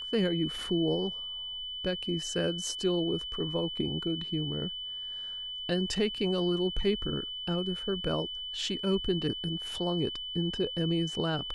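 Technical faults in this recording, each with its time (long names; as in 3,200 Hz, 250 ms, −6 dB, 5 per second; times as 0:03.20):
whistle 3,000 Hz −36 dBFS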